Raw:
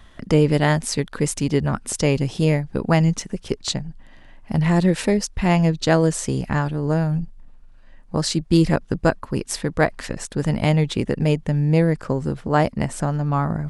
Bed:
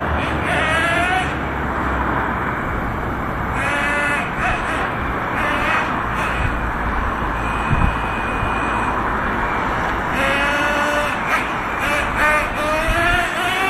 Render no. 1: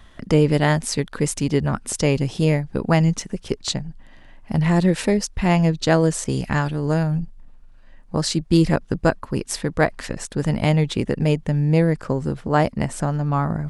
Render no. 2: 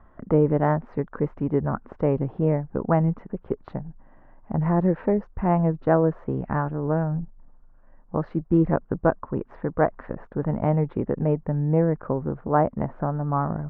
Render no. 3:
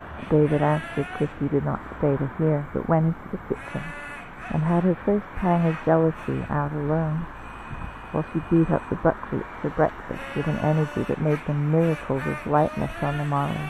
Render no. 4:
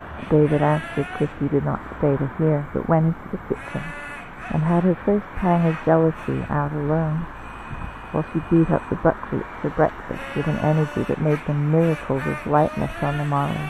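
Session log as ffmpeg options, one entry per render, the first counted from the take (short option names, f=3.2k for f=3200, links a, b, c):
-filter_complex "[0:a]asettb=1/sr,asplit=3[a][b][c];[a]atrim=end=6.244[d];[b]atrim=start=6.24:end=7.03,asetpts=PTS-STARTPTS,afade=t=in:d=0.004:c=qsin,afade=t=out:st=0.786:d=0.004:c=qsin,adynamicequalizer=threshold=0.0112:dfrequency=1700:dqfactor=0.7:tfrequency=1700:tqfactor=0.7:attack=5:release=100:ratio=0.375:range=2.5:mode=boostabove:tftype=highshelf[e];[c]atrim=start=7.026[f];[d][e]acrossfade=d=0.004:c1=hsin:c2=qsin[g];[g][f]acrossfade=d=0.004:c1=qsin:c2=hsin"
-af "lowpass=f=1.3k:w=0.5412,lowpass=f=1.3k:w=1.3066,lowshelf=f=300:g=-6"
-filter_complex "[1:a]volume=-18dB[a];[0:a][a]amix=inputs=2:normalize=0"
-af "volume=2.5dB"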